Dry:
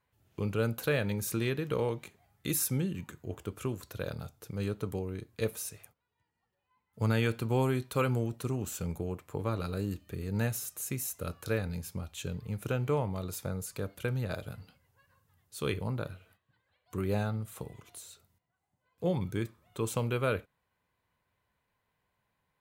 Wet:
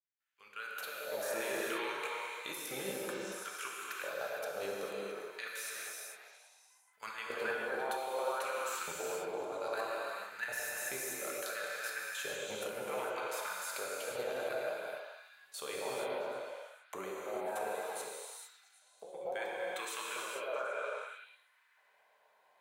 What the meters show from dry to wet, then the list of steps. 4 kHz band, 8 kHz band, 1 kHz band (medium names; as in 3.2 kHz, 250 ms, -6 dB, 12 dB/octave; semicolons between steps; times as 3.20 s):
+0.5 dB, -2.5 dB, +2.0 dB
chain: fade-in on the opening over 1.57 s; LFO high-pass square 0.62 Hz 640–1600 Hz; level held to a coarse grid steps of 16 dB; treble shelf 11 kHz -6.5 dB; hum notches 60/120/180/240/300/360/420/480/540 Hz; on a send: repeats whose band climbs or falls 111 ms, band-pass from 450 Hz, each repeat 0.7 oct, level -2 dB; on the sum: compressor with a negative ratio -41 dBFS, ratio -0.5; gated-style reverb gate 480 ms flat, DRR -3.5 dB; trim +1 dB